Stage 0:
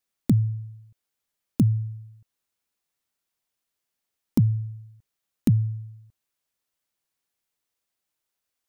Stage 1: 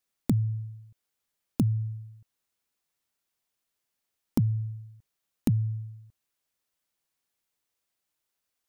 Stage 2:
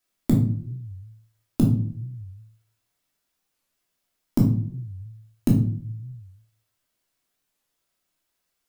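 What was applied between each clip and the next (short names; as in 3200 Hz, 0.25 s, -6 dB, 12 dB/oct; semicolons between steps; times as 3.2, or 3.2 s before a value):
compressor 2:1, threshold -25 dBFS, peak gain reduction 5.5 dB
reverb RT60 0.50 s, pre-delay 3 ms, DRR -2.5 dB; flange 1.4 Hz, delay 9.4 ms, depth 3.1 ms, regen -88%; record warp 45 rpm, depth 250 cents; gain +6 dB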